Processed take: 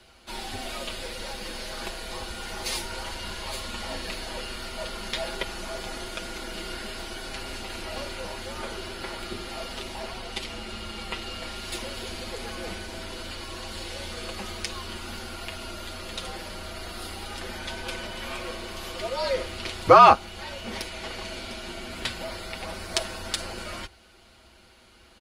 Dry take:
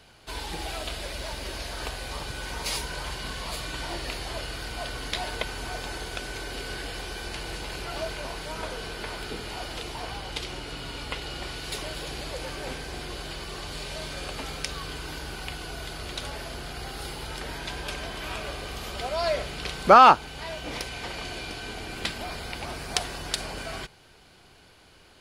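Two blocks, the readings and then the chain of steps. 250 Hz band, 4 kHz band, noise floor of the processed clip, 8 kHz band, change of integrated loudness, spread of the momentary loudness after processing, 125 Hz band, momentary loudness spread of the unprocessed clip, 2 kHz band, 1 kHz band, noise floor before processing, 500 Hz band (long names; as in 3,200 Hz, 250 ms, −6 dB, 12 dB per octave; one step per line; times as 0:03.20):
+0.5 dB, 0.0 dB, −55 dBFS, 0.0 dB, 0.0 dB, 7 LU, −2.5 dB, 6 LU, −1.5 dB, 0.0 dB, −55 dBFS, +1.5 dB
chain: comb filter 6.9 ms, depth 65%
frequency shifter −70 Hz
level −1.5 dB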